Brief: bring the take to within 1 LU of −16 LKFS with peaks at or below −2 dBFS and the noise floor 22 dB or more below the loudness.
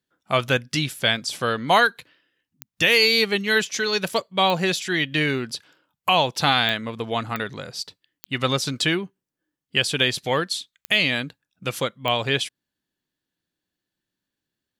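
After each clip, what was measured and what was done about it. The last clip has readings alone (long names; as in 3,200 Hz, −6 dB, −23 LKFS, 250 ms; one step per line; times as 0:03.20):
number of clicks 7; integrated loudness −22.0 LKFS; sample peak −6.0 dBFS; target loudness −16.0 LKFS
→ click removal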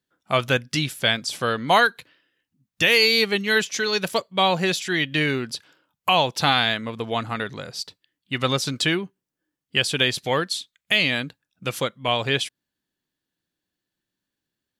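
number of clicks 0; integrated loudness −22.0 LKFS; sample peak −6.0 dBFS; target loudness −16.0 LKFS
→ level +6 dB
brickwall limiter −2 dBFS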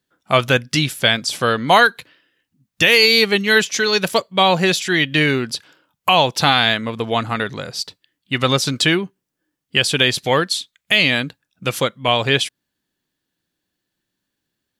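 integrated loudness −16.5 LKFS; sample peak −2.0 dBFS; background noise floor −79 dBFS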